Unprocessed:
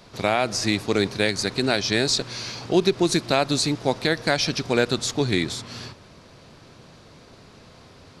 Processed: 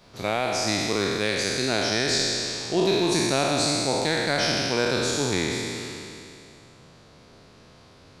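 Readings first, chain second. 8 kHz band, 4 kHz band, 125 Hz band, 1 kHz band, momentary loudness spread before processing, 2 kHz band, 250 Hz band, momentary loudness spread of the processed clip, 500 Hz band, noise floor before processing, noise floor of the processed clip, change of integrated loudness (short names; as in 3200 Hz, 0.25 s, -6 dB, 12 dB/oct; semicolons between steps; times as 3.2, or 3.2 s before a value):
+1.5 dB, 0.0 dB, -2.5 dB, -0.5 dB, 9 LU, -0.5 dB, -2.5 dB, 7 LU, -1.5 dB, -49 dBFS, -52 dBFS, -1.0 dB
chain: spectral trails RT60 2.65 s; gain -6.5 dB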